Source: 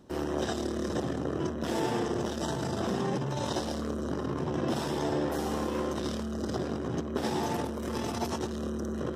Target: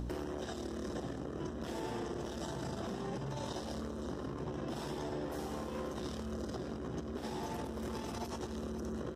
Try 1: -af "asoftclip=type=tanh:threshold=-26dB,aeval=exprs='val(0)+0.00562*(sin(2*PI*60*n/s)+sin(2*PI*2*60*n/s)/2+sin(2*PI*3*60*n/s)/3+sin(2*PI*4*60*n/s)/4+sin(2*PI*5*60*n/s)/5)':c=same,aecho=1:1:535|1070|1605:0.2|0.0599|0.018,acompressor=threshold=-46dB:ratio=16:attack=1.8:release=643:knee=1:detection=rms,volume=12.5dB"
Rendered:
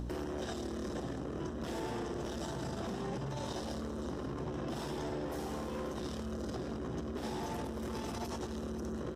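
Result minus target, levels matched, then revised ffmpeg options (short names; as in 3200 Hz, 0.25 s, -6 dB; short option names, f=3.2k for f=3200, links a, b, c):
soft clip: distortion +14 dB
-af "asoftclip=type=tanh:threshold=-17dB,aeval=exprs='val(0)+0.00562*(sin(2*PI*60*n/s)+sin(2*PI*2*60*n/s)/2+sin(2*PI*3*60*n/s)/3+sin(2*PI*4*60*n/s)/4+sin(2*PI*5*60*n/s)/5)':c=same,aecho=1:1:535|1070|1605:0.2|0.0599|0.018,acompressor=threshold=-46dB:ratio=16:attack=1.8:release=643:knee=1:detection=rms,volume=12.5dB"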